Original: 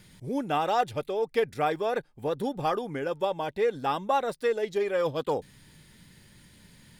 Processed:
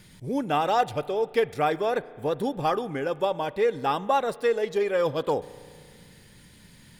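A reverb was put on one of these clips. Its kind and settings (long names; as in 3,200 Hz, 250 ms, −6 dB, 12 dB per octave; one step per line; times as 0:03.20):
spring reverb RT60 2.1 s, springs 34 ms, chirp 55 ms, DRR 18 dB
level +2.5 dB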